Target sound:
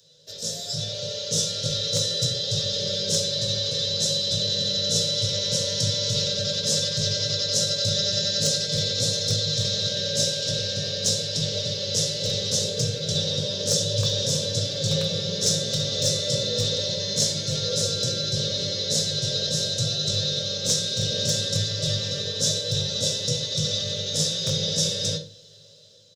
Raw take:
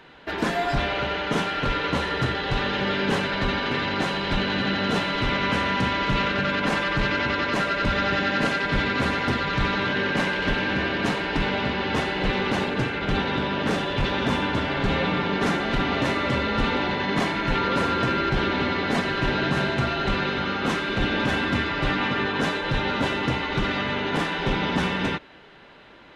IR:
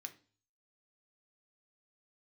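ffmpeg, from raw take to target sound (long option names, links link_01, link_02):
-filter_complex "[0:a]acrossover=split=1000[link_01][link_02];[link_02]aexciter=amount=4.7:drive=7:freq=3400[link_03];[link_01][link_03]amix=inputs=2:normalize=0,dynaudnorm=framelen=400:gausssize=5:maxgain=11.5dB,firequalizer=gain_entry='entry(150,0);entry(240,-18);entry(350,-21);entry(510,10);entry(780,-26);entry(1200,-25);entry(2300,-24);entry(3600,-7);entry(5500,3);entry(10000,-9)':delay=0.05:min_phase=1,aecho=1:1:19|68:0.376|0.188,aeval=exprs='0.473*(abs(mod(val(0)/0.473+3,4)-2)-1)':channel_layout=same,equalizer=frequency=100:width_type=o:width=0.73:gain=6[link_04];[1:a]atrim=start_sample=2205[link_05];[link_04][link_05]afir=irnorm=-1:irlink=0"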